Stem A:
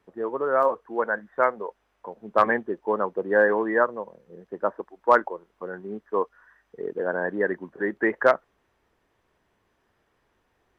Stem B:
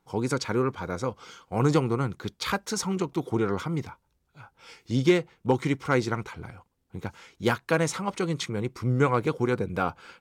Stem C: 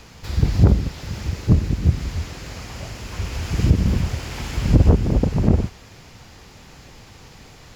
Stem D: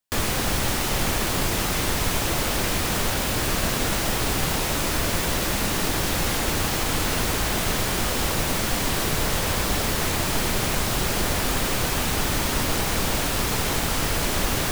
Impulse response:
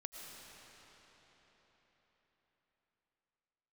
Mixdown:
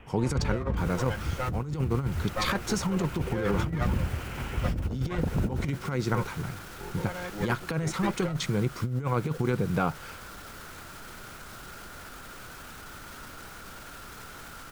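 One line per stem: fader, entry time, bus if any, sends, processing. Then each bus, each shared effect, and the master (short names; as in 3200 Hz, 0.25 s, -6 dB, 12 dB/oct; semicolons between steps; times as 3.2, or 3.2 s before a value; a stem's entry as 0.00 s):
-12.5 dB, 0.00 s, no bus, no send, minimum comb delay 5.6 ms; low shelf 460 Hz +4.5 dB
-0.5 dB, 0.00 s, bus A, no send, de-esser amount 60%; bell 150 Hz +10 dB 0.68 oct
-8.5 dB, 0.00 s, bus A, send -20.5 dB, steep low-pass 3200 Hz 96 dB/oct
-16.0 dB, 0.65 s, bus A, no send, bell 1400 Hz +14 dB 0.35 oct; limiter -21 dBFS, peak gain reduction 12 dB
bus A: 0.0 dB, compressor 2:1, threshold -24 dBFS, peak gain reduction 7 dB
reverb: on, RT60 4.7 s, pre-delay 70 ms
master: negative-ratio compressor -26 dBFS, ratio -0.5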